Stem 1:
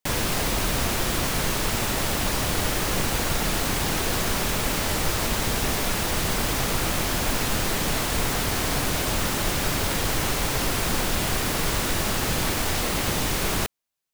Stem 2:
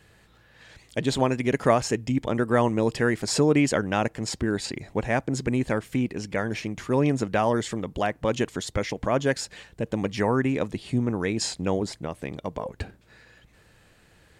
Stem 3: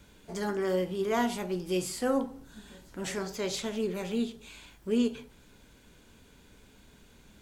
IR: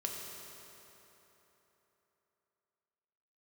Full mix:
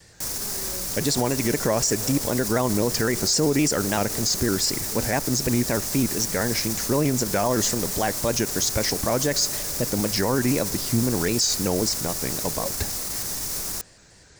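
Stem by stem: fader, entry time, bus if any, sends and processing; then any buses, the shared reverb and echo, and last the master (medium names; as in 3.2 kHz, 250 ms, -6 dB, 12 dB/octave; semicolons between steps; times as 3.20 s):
-7.5 dB, 0.15 s, no send, peak limiter -20.5 dBFS, peak gain reduction 9 dB
+2.5 dB, 0.00 s, send -20 dB, low-pass 7.4 kHz 24 dB/octave; band-stop 1.2 kHz; vibrato with a chosen wave square 3.9 Hz, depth 100 cents
-12.5 dB, 0.00 s, no send, none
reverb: on, RT60 3.7 s, pre-delay 3 ms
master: FFT filter 1.9 kHz 0 dB, 3.1 kHz -3 dB, 5.4 kHz +14 dB; peak limiter -12 dBFS, peak gain reduction 10 dB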